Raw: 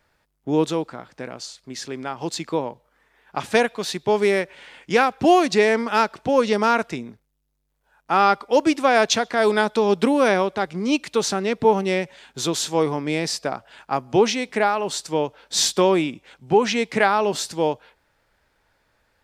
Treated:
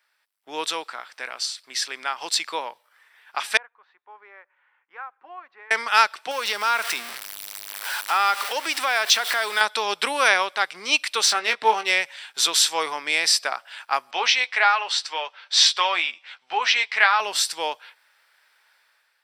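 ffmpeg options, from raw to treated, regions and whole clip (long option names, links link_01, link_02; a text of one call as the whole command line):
ffmpeg -i in.wav -filter_complex "[0:a]asettb=1/sr,asplit=3[link_01][link_02][link_03];[link_01]atrim=end=3.574[link_04];[link_02]atrim=start=3.57:end=5.71,asetpts=PTS-STARTPTS,afade=type=in:duration=0.004:curve=qsin,afade=type=out:start_time=2.136:duration=0.004:curve=qsin,lowpass=frequency=1200:width=0.5412,lowpass=frequency=1200:width=1.3066,aderivative,bandreject=frequency=660:width=6.7[link_05];[link_03]atrim=start=5.706[link_06];[link_04][link_05]acrossfade=duration=0.004:curve1=hsin:curve2=qsin[link_07];[link_07][link_06]acrossfade=duration=0.004:curve1=qsin:curve2=hsin,asettb=1/sr,asplit=3[link_08][link_09][link_10];[link_08]atrim=end=6.314[link_11];[link_09]atrim=start=6.31:end=9.61,asetpts=PTS-STARTPTS,afade=type=in:duration=0.004:curve=qsin,afade=type=out:start_time=3.296:duration=0.004:curve=qsin,aeval=exprs='val(0)+0.5*0.0398*sgn(val(0))':channel_layout=same,acompressor=threshold=-23dB:ratio=2:attack=3.2:release=140:knee=1:detection=peak[link_12];[link_10]atrim=start=9.606[link_13];[link_11][link_12]acrossfade=duration=0.004:curve1=hsin:curve2=qsin[link_14];[link_14][link_13]acrossfade=duration=0.004:curve1=qsin:curve2=hsin,asettb=1/sr,asplit=3[link_15][link_16][link_17];[link_15]atrim=end=11.264[link_18];[link_16]atrim=start=11.26:end=11.91,asetpts=PTS-STARTPTS,afade=type=in:duration=0.004:curve=qsin,afade=type=out:start_time=0.646:duration=0.004:curve=qsin,asplit=2[link_19][link_20];[link_20]adelay=18,volume=-7dB[link_21];[link_19][link_21]amix=inputs=2:normalize=0,atrim=end_sample=28665,adynamicsmooth=sensitivity=5.5:basefreq=6300[link_22];[link_17]atrim=start=11.906[link_23];[link_18][link_22]acrossfade=duration=0.004:curve1=hsin:curve2=qsin[link_24];[link_24][link_23]acrossfade=duration=0.004:curve1=qsin:curve2=hsin,asettb=1/sr,asplit=3[link_25][link_26][link_27];[link_25]atrim=end=14.114[link_28];[link_26]atrim=start=14.11:end=17.2,asetpts=PTS-STARTPTS,afade=type=in:duration=0.004:curve=qsin,afade=type=out:start_time=3.086:duration=0.004:curve=qsin,acrossover=split=530 5700:gain=0.224 1 0.0631[link_29][link_30][link_31];[link_29][link_30][link_31]amix=inputs=3:normalize=0,asplit=2[link_32][link_33];[link_33]adelay=12,volume=-8dB[link_34];[link_32][link_34]amix=inputs=2:normalize=0,atrim=end_sample=136269[link_35];[link_27]atrim=start=17.196[link_36];[link_28][link_35]acrossfade=duration=0.004:curve1=hsin:curve2=qsin[link_37];[link_37][link_36]acrossfade=duration=0.004:curve1=qsin:curve2=hsin,highpass=1400,bandreject=frequency=6700:width=6.1,dynaudnorm=framelen=150:gausssize=7:maxgain=9dB" out.wav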